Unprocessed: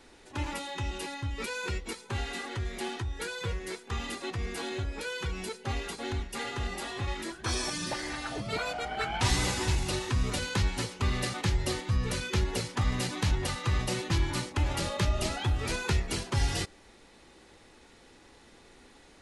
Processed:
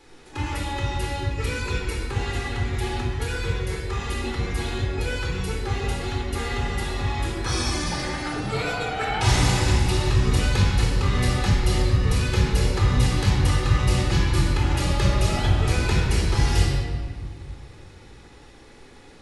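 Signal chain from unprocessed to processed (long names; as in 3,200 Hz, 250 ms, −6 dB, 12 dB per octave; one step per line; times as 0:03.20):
rectangular room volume 2,300 cubic metres, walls mixed, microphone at 4 metres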